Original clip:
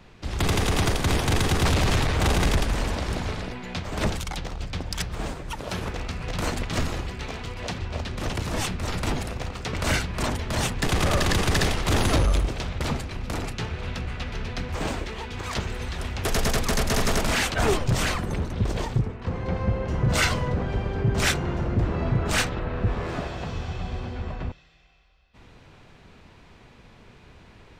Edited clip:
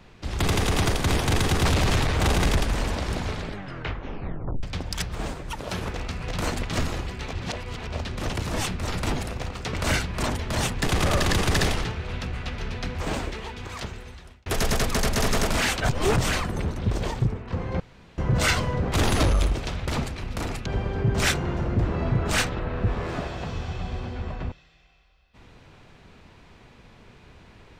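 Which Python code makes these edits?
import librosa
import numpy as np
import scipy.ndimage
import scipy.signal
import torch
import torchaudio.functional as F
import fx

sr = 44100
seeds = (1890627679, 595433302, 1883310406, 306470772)

y = fx.edit(x, sr, fx.tape_stop(start_s=3.34, length_s=1.29),
    fx.reverse_span(start_s=7.33, length_s=0.54),
    fx.move(start_s=11.85, length_s=1.74, to_s=20.66),
    fx.fade_out_span(start_s=15.04, length_s=1.16),
    fx.reverse_span(start_s=17.63, length_s=0.27),
    fx.room_tone_fill(start_s=19.54, length_s=0.38), tone=tone)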